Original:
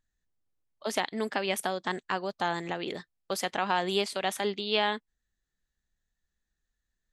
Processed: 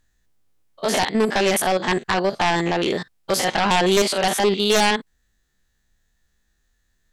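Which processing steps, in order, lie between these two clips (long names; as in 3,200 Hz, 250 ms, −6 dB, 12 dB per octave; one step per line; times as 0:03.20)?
spectrum averaged block by block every 50 ms
sine wavefolder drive 12 dB, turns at −12.5 dBFS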